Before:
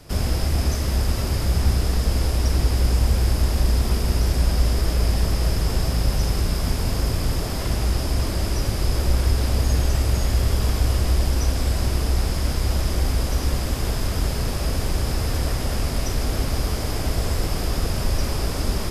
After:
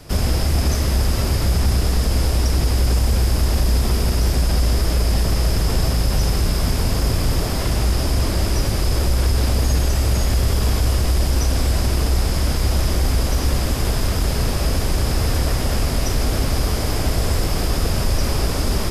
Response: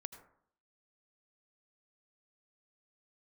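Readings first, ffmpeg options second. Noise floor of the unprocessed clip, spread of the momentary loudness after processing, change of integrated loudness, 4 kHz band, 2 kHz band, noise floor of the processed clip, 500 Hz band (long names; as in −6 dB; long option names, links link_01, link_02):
−26 dBFS, 2 LU, +3.0 dB, +4.0 dB, +3.5 dB, −22 dBFS, +3.5 dB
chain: -filter_complex "[0:a]acrossover=split=4400[link_01][link_02];[link_01]alimiter=limit=-15dB:level=0:latency=1:release=20[link_03];[link_03][link_02]amix=inputs=2:normalize=0,volume=4.5dB"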